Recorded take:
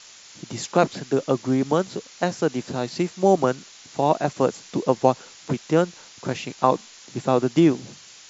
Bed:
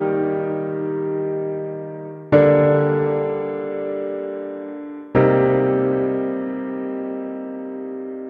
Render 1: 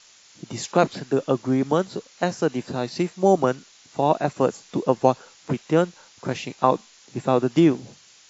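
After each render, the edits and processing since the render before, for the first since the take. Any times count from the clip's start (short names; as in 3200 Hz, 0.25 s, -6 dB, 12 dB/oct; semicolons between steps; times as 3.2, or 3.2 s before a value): noise print and reduce 6 dB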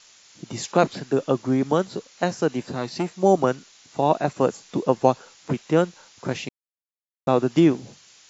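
2.6–3.11 core saturation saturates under 570 Hz; 6.49–7.27 mute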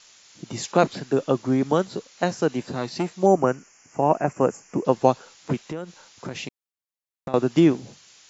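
3.26–4.85 Butterworth band-stop 3800 Hz, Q 1.3; 5.67–7.34 compressor 10:1, threshold -27 dBFS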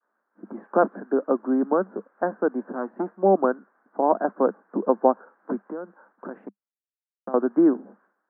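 Chebyshev band-pass 200–1600 Hz, order 5; expander -57 dBFS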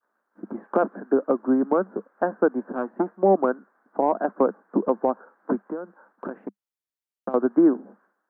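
transient shaper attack +5 dB, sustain 0 dB; limiter -9.5 dBFS, peak gain reduction 10 dB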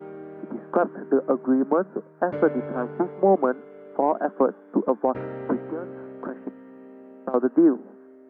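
add bed -19 dB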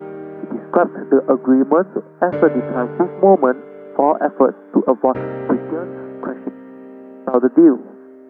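gain +8 dB; limiter -2 dBFS, peak gain reduction 1 dB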